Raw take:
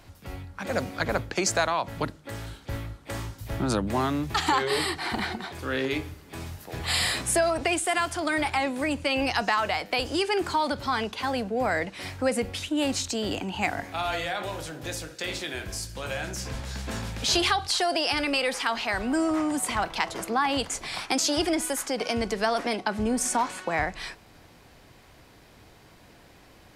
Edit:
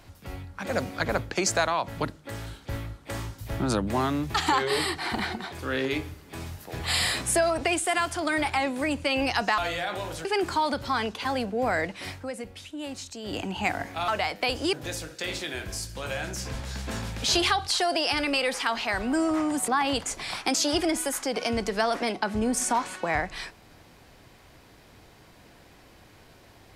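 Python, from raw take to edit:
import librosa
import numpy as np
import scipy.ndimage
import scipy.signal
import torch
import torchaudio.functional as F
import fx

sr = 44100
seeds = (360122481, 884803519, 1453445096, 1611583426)

y = fx.edit(x, sr, fx.swap(start_s=9.58, length_s=0.65, other_s=14.06, other_length_s=0.67),
    fx.fade_down_up(start_s=12.06, length_s=1.33, db=-10.0, fade_s=0.19),
    fx.cut(start_s=19.68, length_s=0.64), tone=tone)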